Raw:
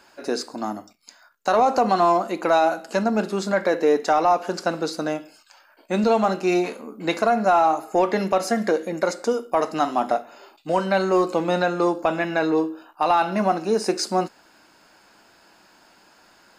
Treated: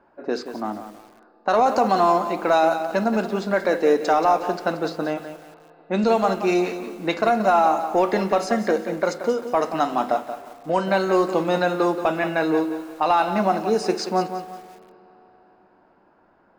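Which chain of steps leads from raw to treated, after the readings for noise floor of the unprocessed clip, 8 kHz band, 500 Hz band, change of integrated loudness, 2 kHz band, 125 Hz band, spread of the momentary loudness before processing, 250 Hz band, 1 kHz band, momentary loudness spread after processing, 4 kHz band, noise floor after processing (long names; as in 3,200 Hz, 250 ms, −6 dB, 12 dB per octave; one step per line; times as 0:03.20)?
−56 dBFS, −4.0 dB, +0.5 dB, +0.5 dB, +0.5 dB, 0.0 dB, 9 LU, +0.5 dB, +0.5 dB, 11 LU, −1.0 dB, −58 dBFS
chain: low-pass that shuts in the quiet parts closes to 920 Hz, open at −15 dBFS
spring reverb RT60 3.6 s, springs 31/54 ms, chirp 20 ms, DRR 17.5 dB
feedback echo at a low word length 179 ms, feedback 35%, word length 7 bits, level −10 dB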